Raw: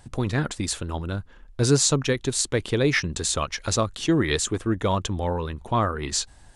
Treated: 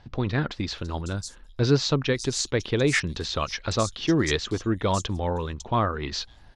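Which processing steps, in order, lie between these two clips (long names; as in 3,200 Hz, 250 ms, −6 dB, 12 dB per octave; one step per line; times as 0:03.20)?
high shelf with overshoot 6,900 Hz −10 dB, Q 1.5
multiband delay without the direct sound lows, highs 550 ms, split 5,400 Hz
level −1 dB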